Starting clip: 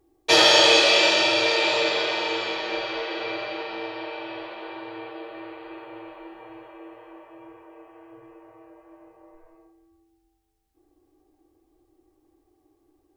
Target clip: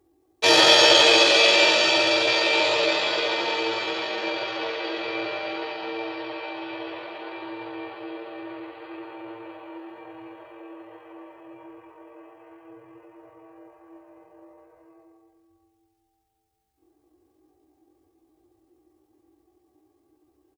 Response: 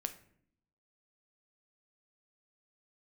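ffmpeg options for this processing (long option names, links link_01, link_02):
-af "highpass=frequency=59:width=0.5412,highpass=frequency=59:width=1.3066,atempo=0.64,aecho=1:1:72.89|236.2:0.355|0.316"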